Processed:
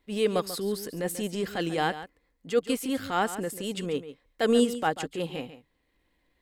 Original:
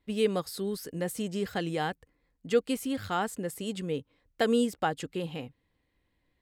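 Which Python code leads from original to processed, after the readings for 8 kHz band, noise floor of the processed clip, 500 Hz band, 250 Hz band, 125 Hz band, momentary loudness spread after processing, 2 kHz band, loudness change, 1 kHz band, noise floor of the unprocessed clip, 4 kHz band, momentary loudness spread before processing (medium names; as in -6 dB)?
+4.0 dB, -73 dBFS, +2.5 dB, +2.0 dB, 0.0 dB, 11 LU, +3.0 dB, +2.5 dB, +3.0 dB, -76 dBFS, +3.5 dB, 10 LU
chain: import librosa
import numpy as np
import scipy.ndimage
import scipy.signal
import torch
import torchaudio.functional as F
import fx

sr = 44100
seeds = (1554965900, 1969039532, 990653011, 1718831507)

y = fx.peak_eq(x, sr, hz=110.0, db=-9.0, octaves=1.3)
y = fx.transient(y, sr, attack_db=-8, sustain_db=-3)
y = y + 10.0 ** (-13.0 / 20.0) * np.pad(y, (int(140 * sr / 1000.0), 0))[:len(y)]
y = y * librosa.db_to_amplitude(6.0)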